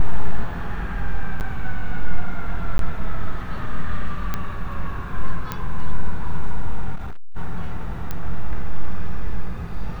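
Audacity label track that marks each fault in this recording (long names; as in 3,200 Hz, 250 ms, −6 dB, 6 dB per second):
1.400000	1.410000	drop-out 9.1 ms
2.780000	2.790000	drop-out 12 ms
4.340000	4.340000	click −10 dBFS
5.520000	5.520000	click −11 dBFS
6.950000	7.370000	clipping −23 dBFS
8.110000	8.110000	click −12 dBFS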